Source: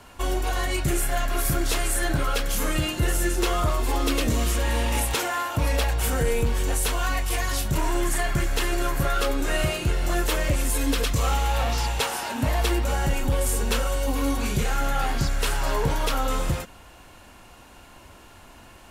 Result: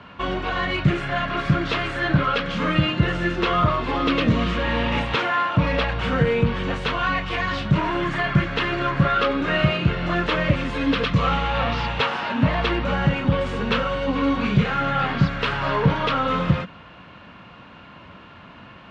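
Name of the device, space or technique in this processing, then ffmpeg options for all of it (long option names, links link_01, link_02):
guitar cabinet: -af "highpass=100,equalizer=frequency=130:width_type=q:width=4:gain=4,equalizer=frequency=180:width_type=q:width=4:gain=9,equalizer=frequency=370:width_type=q:width=4:gain=-5,equalizer=frequency=780:width_type=q:width=4:gain=-6,equalizer=frequency=1200:width_type=q:width=4:gain=4,lowpass=frequency=3500:width=0.5412,lowpass=frequency=3500:width=1.3066,volume=5.5dB"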